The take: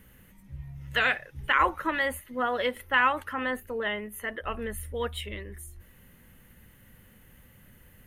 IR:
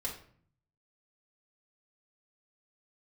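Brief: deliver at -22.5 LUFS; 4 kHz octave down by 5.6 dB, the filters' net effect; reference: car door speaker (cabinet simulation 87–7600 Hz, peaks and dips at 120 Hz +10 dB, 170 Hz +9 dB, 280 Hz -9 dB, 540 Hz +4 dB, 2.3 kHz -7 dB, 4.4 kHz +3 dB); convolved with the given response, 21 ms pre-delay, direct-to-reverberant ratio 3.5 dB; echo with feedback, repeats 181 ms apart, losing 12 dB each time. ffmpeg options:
-filter_complex "[0:a]equalizer=f=4000:t=o:g=-7.5,aecho=1:1:181|362|543:0.251|0.0628|0.0157,asplit=2[s0][s1];[1:a]atrim=start_sample=2205,adelay=21[s2];[s1][s2]afir=irnorm=-1:irlink=0,volume=0.562[s3];[s0][s3]amix=inputs=2:normalize=0,highpass=87,equalizer=f=120:t=q:w=4:g=10,equalizer=f=170:t=q:w=4:g=9,equalizer=f=280:t=q:w=4:g=-9,equalizer=f=540:t=q:w=4:g=4,equalizer=f=2300:t=q:w=4:g=-7,equalizer=f=4400:t=q:w=4:g=3,lowpass=f=7600:w=0.5412,lowpass=f=7600:w=1.3066,volume=1.78"

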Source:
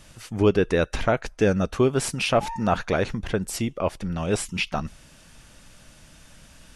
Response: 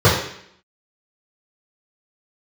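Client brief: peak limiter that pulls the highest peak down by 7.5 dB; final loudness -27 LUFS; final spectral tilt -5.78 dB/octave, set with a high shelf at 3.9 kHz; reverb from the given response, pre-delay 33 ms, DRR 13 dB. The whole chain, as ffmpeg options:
-filter_complex "[0:a]highshelf=f=3900:g=-7.5,alimiter=limit=0.168:level=0:latency=1,asplit=2[s0][s1];[1:a]atrim=start_sample=2205,adelay=33[s2];[s1][s2]afir=irnorm=-1:irlink=0,volume=0.0112[s3];[s0][s3]amix=inputs=2:normalize=0"

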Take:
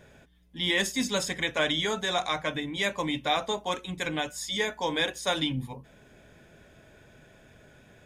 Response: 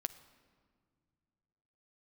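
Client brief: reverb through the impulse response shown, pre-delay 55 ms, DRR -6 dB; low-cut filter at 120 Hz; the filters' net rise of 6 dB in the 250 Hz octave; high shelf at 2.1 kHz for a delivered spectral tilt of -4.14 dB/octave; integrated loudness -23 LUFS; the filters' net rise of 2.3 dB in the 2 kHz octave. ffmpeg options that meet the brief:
-filter_complex "[0:a]highpass=120,equalizer=f=250:t=o:g=8,equalizer=f=2000:t=o:g=4.5,highshelf=f=2100:g=-3.5,asplit=2[s0][s1];[1:a]atrim=start_sample=2205,adelay=55[s2];[s1][s2]afir=irnorm=-1:irlink=0,volume=2.24[s3];[s0][s3]amix=inputs=2:normalize=0,volume=0.668"

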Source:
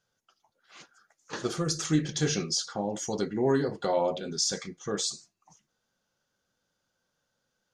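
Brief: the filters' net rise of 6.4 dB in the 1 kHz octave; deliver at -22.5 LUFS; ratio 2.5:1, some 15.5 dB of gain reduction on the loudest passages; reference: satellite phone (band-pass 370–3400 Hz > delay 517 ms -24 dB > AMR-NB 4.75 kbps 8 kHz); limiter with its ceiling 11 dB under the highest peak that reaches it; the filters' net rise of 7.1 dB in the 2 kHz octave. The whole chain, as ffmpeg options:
-af "equalizer=f=1000:t=o:g=7,equalizer=f=2000:t=o:g=7,acompressor=threshold=0.00708:ratio=2.5,alimiter=level_in=3.76:limit=0.0631:level=0:latency=1,volume=0.266,highpass=370,lowpass=3400,aecho=1:1:517:0.0631,volume=28.2" -ar 8000 -c:a libopencore_amrnb -b:a 4750

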